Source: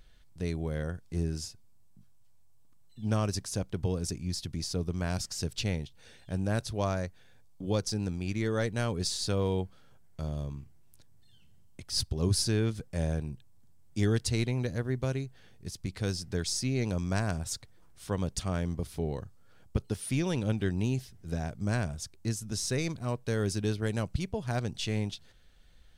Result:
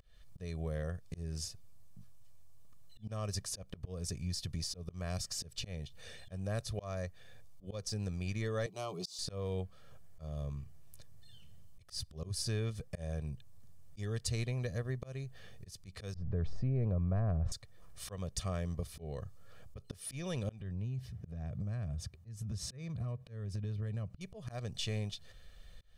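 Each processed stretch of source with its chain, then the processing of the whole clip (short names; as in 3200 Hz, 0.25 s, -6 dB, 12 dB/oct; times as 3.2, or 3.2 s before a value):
8.66–9.19 HPF 180 Hz 24 dB/oct + bell 9200 Hz -8.5 dB 0.49 oct + fixed phaser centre 340 Hz, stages 8
16.14–17.52 LPF 1300 Hz + tilt -2 dB/oct + fast leveller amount 70%
20.6–24.21 HPF 67 Hz + tone controls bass +11 dB, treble -9 dB + compressor 12:1, threshold -32 dBFS
whole clip: comb 1.7 ms, depth 58%; auto swell 0.308 s; compressor 2:1, threshold -43 dBFS; gain +2.5 dB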